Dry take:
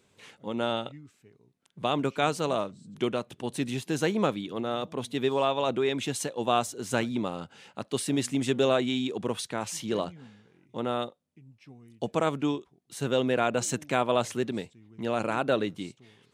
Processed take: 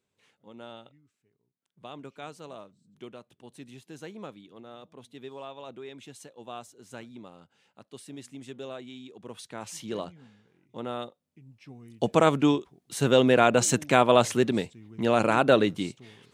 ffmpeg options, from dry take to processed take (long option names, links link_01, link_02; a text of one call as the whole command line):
ffmpeg -i in.wav -af "volume=6dB,afade=type=in:start_time=9.18:duration=0.59:silence=0.281838,afade=type=in:start_time=11.03:duration=1.11:silence=0.298538" out.wav